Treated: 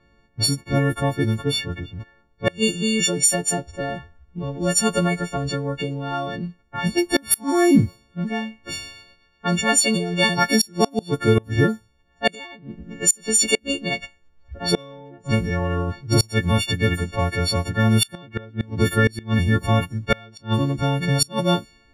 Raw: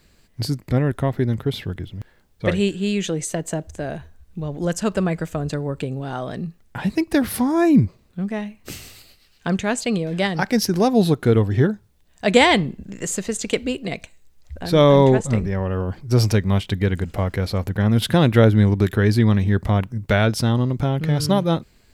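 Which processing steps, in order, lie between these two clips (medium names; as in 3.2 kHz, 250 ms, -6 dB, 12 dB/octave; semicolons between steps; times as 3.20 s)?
partials quantised in pitch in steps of 4 st; inverted gate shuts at -5 dBFS, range -28 dB; level-controlled noise filter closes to 1.3 kHz, open at -16 dBFS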